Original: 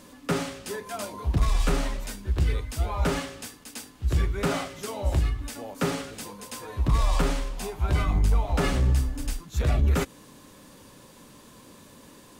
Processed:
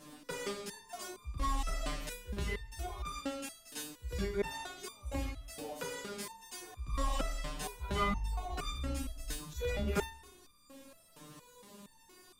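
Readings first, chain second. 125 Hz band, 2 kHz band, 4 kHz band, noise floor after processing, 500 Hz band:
-16.0 dB, -7.5 dB, -7.0 dB, -63 dBFS, -8.0 dB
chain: Schroeder reverb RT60 0.87 s, combs from 25 ms, DRR 9.5 dB; stepped resonator 4.3 Hz 150–1200 Hz; gain +8 dB

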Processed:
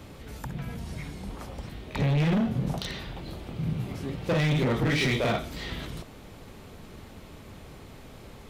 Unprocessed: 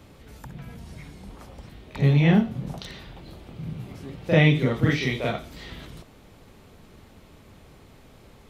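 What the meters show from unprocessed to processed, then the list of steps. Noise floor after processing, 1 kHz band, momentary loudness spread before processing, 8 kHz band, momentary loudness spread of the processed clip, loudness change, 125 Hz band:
-47 dBFS, 0.0 dB, 23 LU, n/a, 22 LU, -6.5 dB, -4.0 dB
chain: limiter -17 dBFS, peak gain reduction 11.5 dB; hard clip -26 dBFS, distortion -9 dB; gain +4.5 dB

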